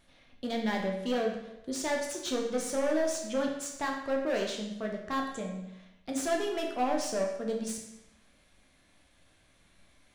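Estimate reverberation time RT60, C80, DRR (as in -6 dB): 0.90 s, 7.0 dB, 0.5 dB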